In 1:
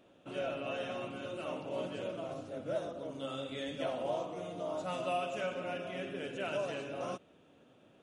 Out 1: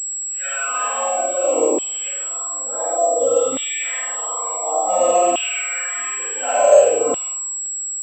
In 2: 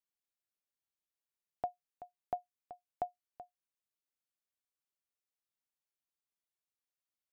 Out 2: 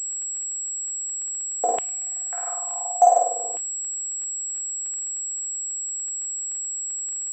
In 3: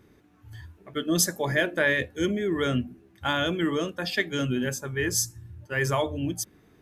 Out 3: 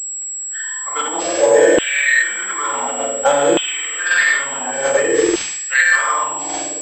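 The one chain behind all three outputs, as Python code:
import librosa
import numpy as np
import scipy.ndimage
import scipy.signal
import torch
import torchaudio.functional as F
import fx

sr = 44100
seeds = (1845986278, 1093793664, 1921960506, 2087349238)

p1 = fx.low_shelf(x, sr, hz=330.0, db=10.5)
p2 = p1 + 0.44 * np.pad(p1, (int(3.9 * sr / 1000.0), 0))[:len(p1)]
p3 = p2 + fx.room_flutter(p2, sr, wall_m=8.5, rt60_s=0.89, dry=0)
p4 = fx.rev_gated(p3, sr, seeds[0], gate_ms=190, shape='flat', drr_db=-5.5)
p5 = fx.over_compress(p4, sr, threshold_db=-21.0, ratio=-0.5)
p6 = p4 + (p5 * 10.0 ** (2.0 / 20.0))
p7 = 10.0 ** (-6.0 / 20.0) * np.tanh(p6 / 10.0 ** (-6.0 / 20.0))
p8 = fx.noise_reduce_blind(p7, sr, reduce_db=16)
p9 = fx.filter_lfo_highpass(p8, sr, shape='saw_down', hz=0.56, low_hz=380.0, high_hz=3000.0, q=4.9)
p10 = fx.dmg_crackle(p9, sr, seeds[1], per_s=41.0, level_db=-32.0)
p11 = fx.pwm(p10, sr, carrier_hz=7700.0)
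y = p11 * 10.0 ** (-3.5 / 20.0)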